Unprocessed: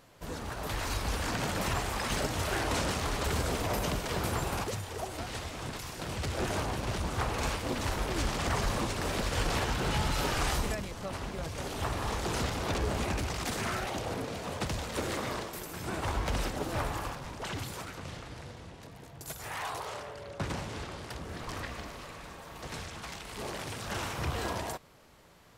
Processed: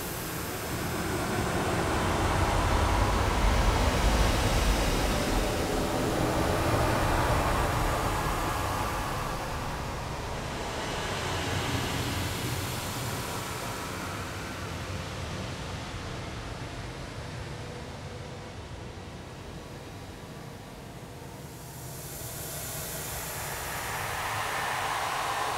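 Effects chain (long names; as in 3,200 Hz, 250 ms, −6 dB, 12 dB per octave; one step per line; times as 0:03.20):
extreme stretch with random phases 6.3×, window 0.50 s, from 0:15.67
level +6.5 dB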